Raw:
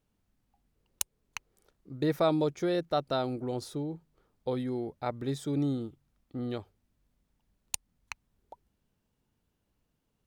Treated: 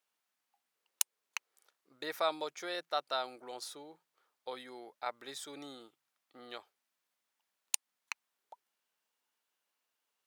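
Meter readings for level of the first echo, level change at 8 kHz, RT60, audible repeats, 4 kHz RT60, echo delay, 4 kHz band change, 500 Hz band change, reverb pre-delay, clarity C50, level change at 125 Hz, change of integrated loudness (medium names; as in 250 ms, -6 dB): no echo, +1.0 dB, no reverb, no echo, no reverb, no echo, +1.0 dB, -9.5 dB, no reverb, no reverb, -32.0 dB, -7.0 dB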